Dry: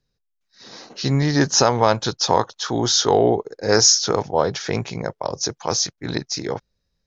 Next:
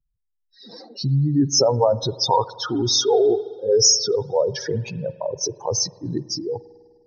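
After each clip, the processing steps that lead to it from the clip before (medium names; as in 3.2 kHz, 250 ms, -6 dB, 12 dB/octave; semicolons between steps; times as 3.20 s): spectral contrast enhancement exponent 3.4; spring tank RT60 1.8 s, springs 50 ms, chirp 70 ms, DRR 17.5 dB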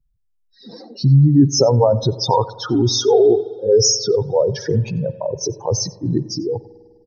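bass shelf 460 Hz +10.5 dB; delay 91 ms -22 dB; trim -1 dB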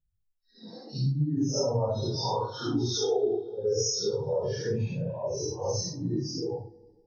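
phase randomisation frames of 200 ms; compression 2.5:1, threshold -19 dBFS, peak gain reduction 9 dB; trim -7.5 dB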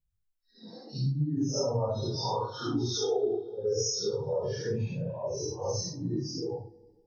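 dynamic bell 1.2 kHz, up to +6 dB, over -59 dBFS, Q 6.5; trim -2 dB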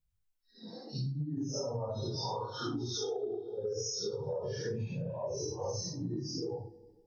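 compression, threshold -33 dBFS, peak gain reduction 9.5 dB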